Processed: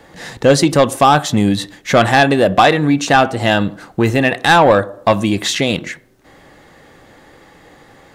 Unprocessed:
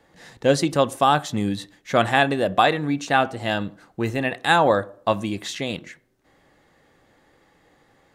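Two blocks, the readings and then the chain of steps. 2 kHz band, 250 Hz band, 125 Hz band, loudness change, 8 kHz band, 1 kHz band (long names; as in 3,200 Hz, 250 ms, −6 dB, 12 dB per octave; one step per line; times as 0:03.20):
+8.0 dB, +10.0 dB, +10.0 dB, +8.0 dB, +11.0 dB, +7.5 dB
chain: in parallel at +1 dB: downward compressor, threshold −29 dBFS, peak gain reduction 16 dB
on the sum: soft clipping −10 dBFS, distortion −15 dB
level +8 dB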